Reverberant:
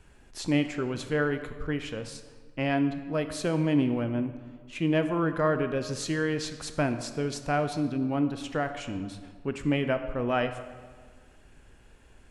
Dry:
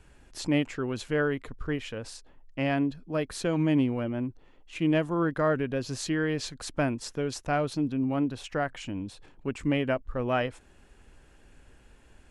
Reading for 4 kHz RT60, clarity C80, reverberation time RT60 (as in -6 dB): 1.1 s, 11.5 dB, 1.6 s